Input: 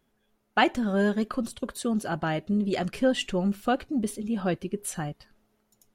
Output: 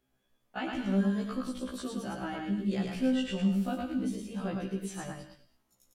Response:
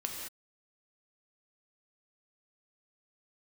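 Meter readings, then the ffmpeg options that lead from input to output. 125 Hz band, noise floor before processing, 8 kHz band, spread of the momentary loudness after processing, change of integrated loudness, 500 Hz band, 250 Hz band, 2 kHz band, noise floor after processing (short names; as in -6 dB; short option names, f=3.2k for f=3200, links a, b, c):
-2.5 dB, -73 dBFS, -9.0 dB, 10 LU, -5.0 dB, -9.0 dB, -3.0 dB, -10.5 dB, -76 dBFS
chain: -filter_complex "[0:a]acrossover=split=6900[a][b];[b]acompressor=threshold=-51dB:ratio=4:attack=1:release=60[c];[a][c]amix=inputs=2:normalize=0,asplit=2[d][e];[e]equalizer=f=710:w=0.35:g=-7.5[f];[1:a]atrim=start_sample=2205[g];[f][g]afir=irnorm=-1:irlink=0,volume=-0.5dB[h];[d][h]amix=inputs=2:normalize=0,acrossover=split=270[i][j];[j]acompressor=threshold=-26dB:ratio=5[k];[i][k]amix=inputs=2:normalize=0,aecho=1:1:109:0.708,afftfilt=real='re*1.73*eq(mod(b,3),0)':imag='im*1.73*eq(mod(b,3),0)':win_size=2048:overlap=0.75,volume=-7dB"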